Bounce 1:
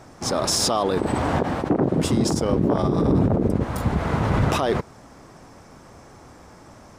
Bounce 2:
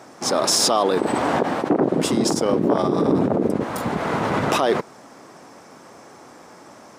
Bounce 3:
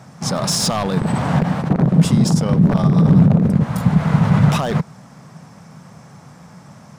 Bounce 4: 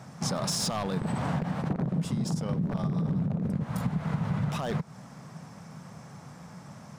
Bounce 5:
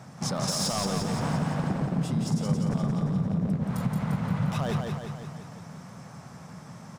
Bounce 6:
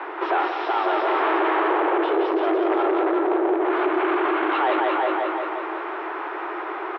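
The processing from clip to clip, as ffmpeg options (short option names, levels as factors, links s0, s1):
-af "highpass=240,volume=1.5"
-af "aeval=exprs='0.299*(abs(mod(val(0)/0.299+3,4)-2)-1)':c=same,lowshelf=f=230:t=q:w=3:g=12,volume=0.891"
-af "acompressor=threshold=0.0794:ratio=6,volume=0.596"
-af "aecho=1:1:174|348|522|696|870|1044|1218|1392:0.631|0.366|0.212|0.123|0.0714|0.0414|0.024|0.0139"
-filter_complex "[0:a]asplit=2[s0][s1];[s1]adelay=367.3,volume=0.447,highshelf=f=4000:g=-8.27[s2];[s0][s2]amix=inputs=2:normalize=0,asplit=2[s3][s4];[s4]highpass=f=720:p=1,volume=22.4,asoftclip=type=tanh:threshold=0.2[s5];[s3][s5]amix=inputs=2:normalize=0,lowpass=f=1300:p=1,volume=0.501,highpass=f=170:t=q:w=0.5412,highpass=f=170:t=q:w=1.307,lowpass=f=3200:t=q:w=0.5176,lowpass=f=3200:t=q:w=0.7071,lowpass=f=3200:t=q:w=1.932,afreqshift=170,volume=1.41"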